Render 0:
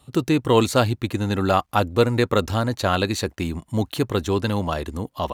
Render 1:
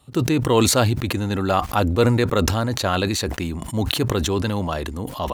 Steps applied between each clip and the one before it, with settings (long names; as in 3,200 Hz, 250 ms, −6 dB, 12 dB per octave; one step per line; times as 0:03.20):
level that may fall only so fast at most 31 dB per second
level −1 dB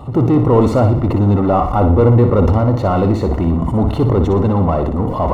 power curve on the samples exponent 0.5
Savitzky-Golay smoothing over 65 samples
flutter between parallel walls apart 10.2 metres, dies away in 0.49 s
level −1 dB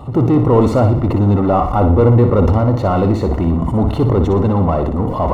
no processing that can be heard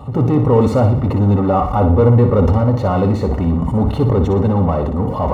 notch comb filter 340 Hz